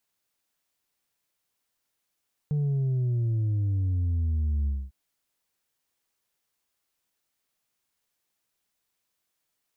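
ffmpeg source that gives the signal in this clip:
ffmpeg -f lavfi -i "aevalsrc='0.0668*clip((2.4-t)/0.24,0,1)*tanh(1.41*sin(2*PI*150*2.4/log(65/150)*(exp(log(65/150)*t/2.4)-1)))/tanh(1.41)':duration=2.4:sample_rate=44100" out.wav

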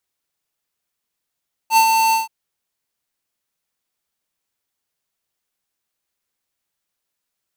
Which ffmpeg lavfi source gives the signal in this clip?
ffmpeg -f lavfi -i "aevalsrc='0.282*(2*lt(mod(895*t,1),0.5)-1)':duration=0.578:sample_rate=44100,afade=type=in:duration=0.068,afade=type=out:start_time=0.068:duration=0.087:silence=0.596,afade=type=out:start_time=0.43:duration=0.148" out.wav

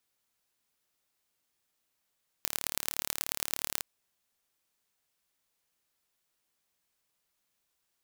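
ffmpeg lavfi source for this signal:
ffmpeg -f lavfi -i "aevalsrc='0.841*eq(mod(n,1198),0)*(0.5+0.5*eq(mod(n,4792),0))':duration=1.37:sample_rate=44100" out.wav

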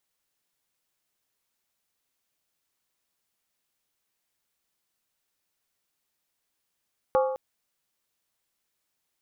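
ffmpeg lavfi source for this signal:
ffmpeg -f lavfi -i "aevalsrc='0.126*pow(10,-3*t/0.94)*sin(2*PI*523*t)+0.0708*pow(10,-3*t/0.745)*sin(2*PI*833.7*t)+0.0398*pow(10,-3*t/0.643)*sin(2*PI*1117.1*t)+0.0224*pow(10,-3*t/0.62)*sin(2*PI*1200.8*t)+0.0126*pow(10,-3*t/0.577)*sin(2*PI*1387.5*t)':duration=0.21:sample_rate=44100" out.wav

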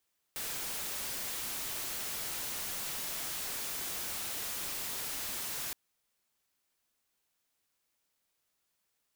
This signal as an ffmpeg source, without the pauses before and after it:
ffmpeg -f lavfi -i "anoisesrc=color=white:amplitude=0.0218:duration=5.37:sample_rate=44100:seed=1" out.wav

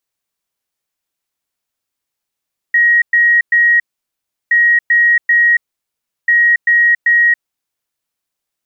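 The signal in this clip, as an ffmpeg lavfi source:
ffmpeg -f lavfi -i "aevalsrc='0.447*sin(2*PI*1890*t)*clip(min(mod(mod(t,1.77),0.39),0.28-mod(mod(t,1.77),0.39))/0.005,0,1)*lt(mod(t,1.77),1.17)':duration=5.31:sample_rate=44100" out.wav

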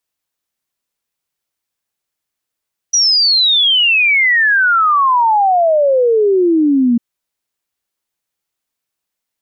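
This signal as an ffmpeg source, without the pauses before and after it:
ffmpeg -f lavfi -i "aevalsrc='0.376*clip(min(t,4.05-t)/0.01,0,1)*sin(2*PI*5900*4.05/log(230/5900)*(exp(log(230/5900)*t/4.05)-1))':duration=4.05:sample_rate=44100" out.wav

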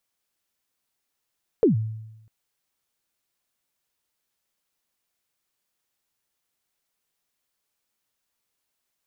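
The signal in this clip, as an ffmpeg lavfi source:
ffmpeg -f lavfi -i "aevalsrc='0.251*pow(10,-3*t/0.95)*sin(2*PI*(500*0.126/log(110/500)*(exp(log(110/500)*min(t,0.126)/0.126)-1)+110*max(t-0.126,0)))':duration=0.65:sample_rate=44100" out.wav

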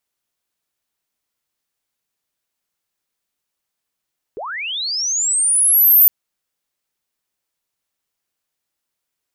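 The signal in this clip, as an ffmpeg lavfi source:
ffmpeg -f lavfi -i "aevalsrc='pow(10,(-25.5+19.5*t/1.71)/20)*sin(2*PI*(360*t+13640*t*t/(2*1.71)))':duration=1.71:sample_rate=44100" out.wav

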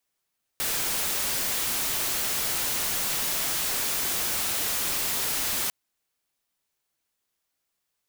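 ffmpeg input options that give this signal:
ffmpeg -f lavfi -i "anoisesrc=color=white:amplitude=0.073:duration=5.1:sample_rate=44100:seed=1" out.wav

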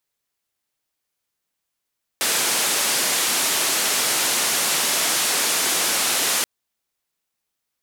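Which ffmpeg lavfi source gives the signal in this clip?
ffmpeg -f lavfi -i "anoisesrc=color=white:duration=4.23:sample_rate=44100:seed=1,highpass=frequency=230,lowpass=frequency=11000,volume=-13.1dB" out.wav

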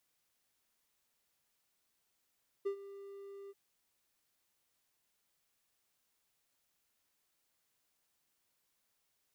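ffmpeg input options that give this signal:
ffmpeg -f lavfi -i "aevalsrc='0.0355*(1-4*abs(mod(397*t+0.25,1)-0.5))':duration=0.885:sample_rate=44100,afade=type=in:duration=0.016,afade=type=out:start_time=0.016:duration=0.088:silence=0.158,afade=type=out:start_time=0.85:duration=0.035" out.wav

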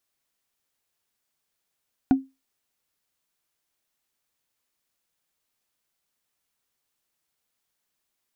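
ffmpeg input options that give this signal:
ffmpeg -f lavfi -i "aevalsrc='0.299*pow(10,-3*t/0.23)*sin(2*PI*267*t)+0.0944*pow(10,-3*t/0.068)*sin(2*PI*736.1*t)+0.0299*pow(10,-3*t/0.03)*sin(2*PI*1442.9*t)+0.00944*pow(10,-3*t/0.017)*sin(2*PI*2385.1*t)+0.00299*pow(10,-3*t/0.01)*sin(2*PI*3561.8*t)':duration=0.45:sample_rate=44100" out.wav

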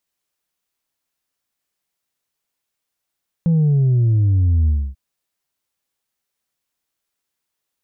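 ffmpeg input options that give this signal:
ffmpeg -f lavfi -i "aevalsrc='0.237*clip((1.49-t)/0.27,0,1)*tanh(1.26*sin(2*PI*170*1.49/log(65/170)*(exp(log(65/170)*t/1.49)-1)))/tanh(1.26)':duration=1.49:sample_rate=44100" out.wav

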